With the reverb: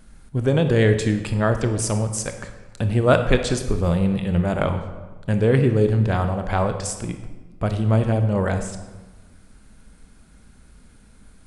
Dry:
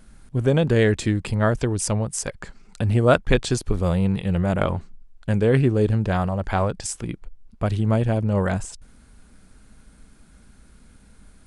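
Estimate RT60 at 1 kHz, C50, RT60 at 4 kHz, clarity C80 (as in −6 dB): 1.2 s, 8.5 dB, 0.90 s, 10.5 dB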